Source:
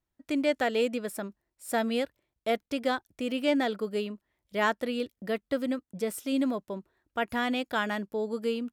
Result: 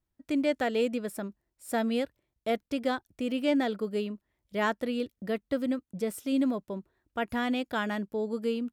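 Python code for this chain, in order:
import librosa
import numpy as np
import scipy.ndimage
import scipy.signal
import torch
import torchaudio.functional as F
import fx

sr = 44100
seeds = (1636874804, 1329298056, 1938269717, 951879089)

y = fx.low_shelf(x, sr, hz=340.0, db=6.5)
y = y * librosa.db_to_amplitude(-3.0)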